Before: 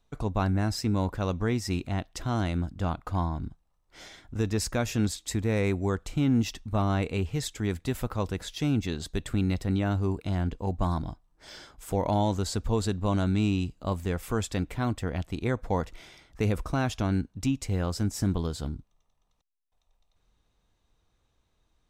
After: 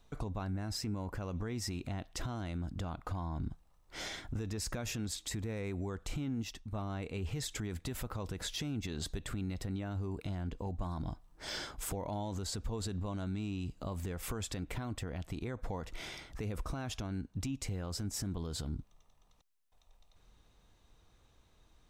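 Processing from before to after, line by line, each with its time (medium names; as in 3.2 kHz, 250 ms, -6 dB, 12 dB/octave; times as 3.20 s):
0.84–1.37 s: band-stop 3.7 kHz, Q 5.2
6.23–7.28 s: dip -12.5 dB, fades 0.13 s
whole clip: compression 4:1, threshold -35 dBFS; peak limiter -35 dBFS; trim +6 dB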